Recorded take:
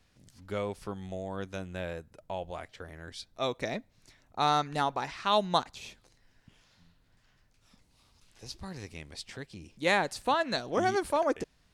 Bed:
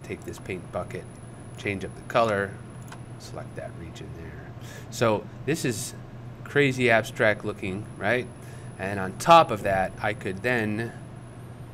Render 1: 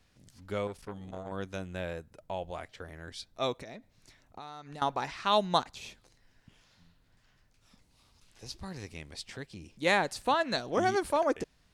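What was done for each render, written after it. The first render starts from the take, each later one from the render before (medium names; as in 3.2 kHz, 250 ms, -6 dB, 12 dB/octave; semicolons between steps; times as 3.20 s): 0.67–1.32 s: transformer saturation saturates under 640 Hz; 3.56–4.82 s: compression 8:1, threshold -41 dBFS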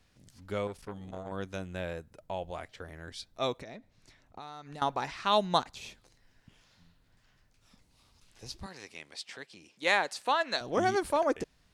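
3.60–4.39 s: treble shelf 8.6 kHz -8.5 dB; 8.66–10.61 s: frequency weighting A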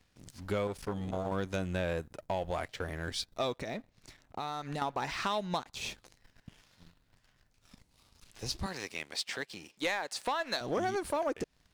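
compression 12:1, threshold -35 dBFS, peak gain reduction 15.5 dB; waveshaping leveller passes 2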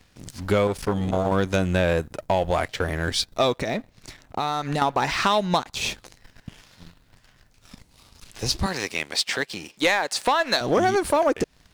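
trim +12 dB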